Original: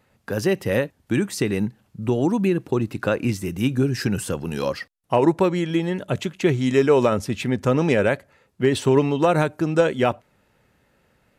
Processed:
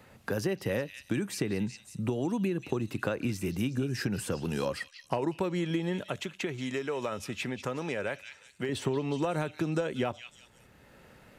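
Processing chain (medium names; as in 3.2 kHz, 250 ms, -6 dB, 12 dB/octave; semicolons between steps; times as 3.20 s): repeats whose band climbs or falls 183 ms, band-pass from 3.3 kHz, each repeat 0.7 oct, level -8.5 dB; compression, threshold -22 dBFS, peak gain reduction 10 dB; 6.01–8.69 s: bass shelf 430 Hz -10 dB; three bands compressed up and down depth 40%; trim -4.5 dB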